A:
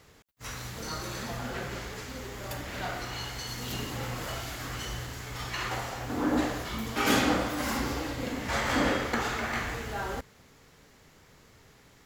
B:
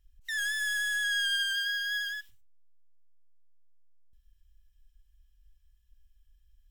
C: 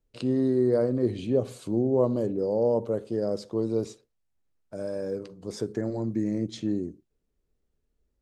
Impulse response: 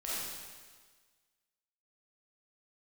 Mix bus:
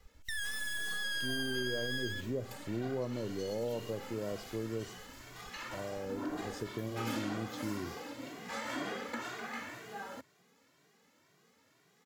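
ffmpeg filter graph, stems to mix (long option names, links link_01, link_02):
-filter_complex "[0:a]highpass=frequency=170:width=0.5412,highpass=frequency=170:width=1.3066,asplit=2[link_01][link_02];[link_02]adelay=2,afreqshift=2[link_03];[link_01][link_03]amix=inputs=2:normalize=1,volume=-7dB[link_04];[1:a]aeval=exprs='max(val(0),0)':channel_layout=same,volume=2dB[link_05];[2:a]adelay=1000,volume=-9dB[link_06];[link_04][link_05][link_06]amix=inputs=3:normalize=0,equalizer=frequency=82:width_type=o:width=0.83:gain=9.5,acompressor=threshold=-34dB:ratio=2.5"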